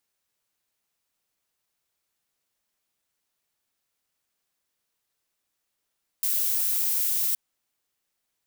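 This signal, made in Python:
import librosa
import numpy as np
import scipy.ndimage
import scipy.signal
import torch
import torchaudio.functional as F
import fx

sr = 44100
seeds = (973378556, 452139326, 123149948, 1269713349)

y = fx.noise_colour(sr, seeds[0], length_s=1.12, colour='violet', level_db=-25.0)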